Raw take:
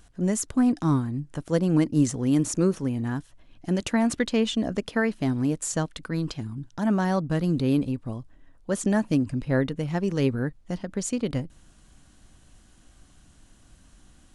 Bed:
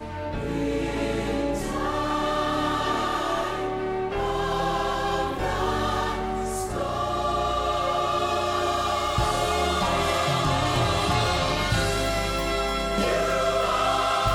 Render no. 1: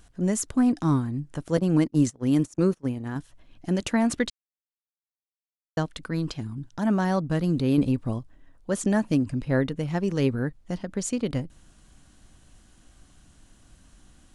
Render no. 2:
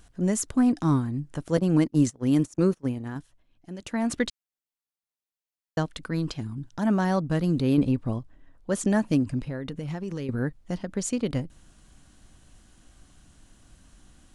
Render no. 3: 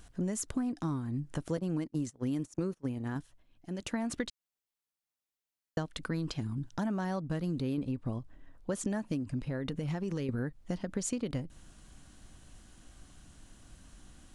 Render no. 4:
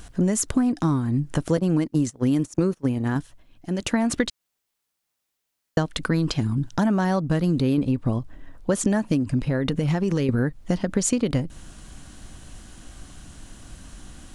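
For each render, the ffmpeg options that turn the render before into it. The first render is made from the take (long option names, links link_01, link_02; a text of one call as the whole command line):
ffmpeg -i in.wav -filter_complex "[0:a]asettb=1/sr,asplit=3[link_01][link_02][link_03];[link_01]atrim=end=1.574[link_04];[link_02]atrim=start=1.57:end=3.16,asetpts=PTS-STARTPTS,afade=type=in:duration=0.004:curve=qsin,afade=type=out:start_time=1.586:duration=0.004:curve=qsin,agate=range=-25dB:threshold=-28dB:ratio=16:release=100:detection=peak[link_05];[link_03]atrim=start=3.156[link_06];[link_04][link_05]acrossfade=duration=0.004:curve1=hsin:curve2=qsin[link_07];[link_07][link_06]acrossfade=duration=0.004:curve1=qsin:curve2=hsin,asplit=5[link_08][link_09][link_10][link_11][link_12];[link_08]atrim=end=4.3,asetpts=PTS-STARTPTS,afade=type=out:start_time=4.296:duration=0.004:curve=hsin[link_13];[link_09]atrim=start=4.3:end=5.77,asetpts=PTS-STARTPTS,volume=0[link_14];[link_10]atrim=start=5.77:end=7.782,asetpts=PTS-STARTPTS,afade=type=in:duration=0.004:curve=hsin[link_15];[link_11]atrim=start=7.778:end=8.192,asetpts=PTS-STARTPTS,volume=4.5dB[link_16];[link_12]atrim=start=8.188[link_17];[link_13][link_14][link_15]concat=n=3:v=0:a=1[link_18];[link_18][link_16]acrossfade=duration=0.004:curve1=hsin:curve2=hsin[link_19];[link_19][link_17]acrossfade=duration=0.004:curve1=hsin:curve2=hsin" out.wav
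ffmpeg -i in.wav -filter_complex "[0:a]asettb=1/sr,asplit=3[link_01][link_02][link_03];[link_01]atrim=end=7.744[link_04];[link_02]atrim=start=7.74:end=8.7,asetpts=PTS-STARTPTS,afade=type=in:duration=0.004:curve=qsin,afade=type=out:start_time=0.956:duration=0.004:curve=qsin,highshelf=frequency=5800:gain=-7[link_05];[link_03]atrim=start=8.696[link_06];[link_04][link_05]acrossfade=duration=0.004:curve1=hsin:curve2=qsin[link_07];[link_07][link_06]acrossfade=duration=0.004:curve1=qsin:curve2=hsin,asettb=1/sr,asplit=3[link_08][link_09][link_10];[link_08]atrim=end=9.394[link_11];[link_09]atrim=start=9.39:end=10.29,asetpts=PTS-STARTPTS,afade=type=in:duration=0.004:curve=qsin,afade=type=out:start_time=0.896:duration=0.004:curve=qsin,acompressor=threshold=-28dB:ratio=12:attack=3.2:release=140:knee=1:detection=peak[link_12];[link_10]atrim=start=10.286[link_13];[link_11][link_12]acrossfade=duration=0.004:curve1=hsin:curve2=qsin[link_14];[link_14][link_13]acrossfade=duration=0.004:curve1=qsin:curve2=hsin,asplit=3[link_15][link_16][link_17];[link_15]atrim=end=3.43,asetpts=PTS-STARTPTS,afade=type=out:start_time=2.96:duration=0.47:silence=0.211349[link_18];[link_16]atrim=start=3.43:end=3.77,asetpts=PTS-STARTPTS,volume=-13.5dB[link_19];[link_17]atrim=start=3.77,asetpts=PTS-STARTPTS,afade=type=in:duration=0.47:silence=0.211349[link_20];[link_18][link_19][link_20]concat=n=3:v=0:a=1" out.wav
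ffmpeg -i in.wav -af "acompressor=threshold=-30dB:ratio=10" out.wav
ffmpeg -i in.wav -af "volume=12dB" out.wav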